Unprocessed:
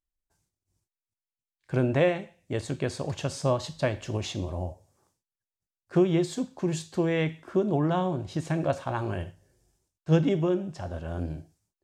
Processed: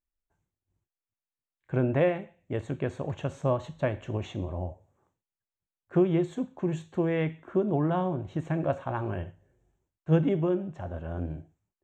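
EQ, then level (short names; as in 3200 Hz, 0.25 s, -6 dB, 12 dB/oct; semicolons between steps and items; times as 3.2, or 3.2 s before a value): running mean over 9 samples; -1.0 dB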